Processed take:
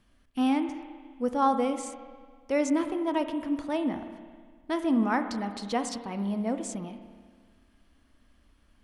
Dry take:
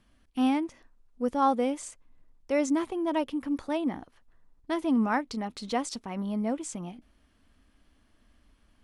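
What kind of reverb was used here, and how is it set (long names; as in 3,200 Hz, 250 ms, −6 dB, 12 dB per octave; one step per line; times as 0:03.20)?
spring reverb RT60 1.7 s, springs 30/49 ms, chirp 75 ms, DRR 8 dB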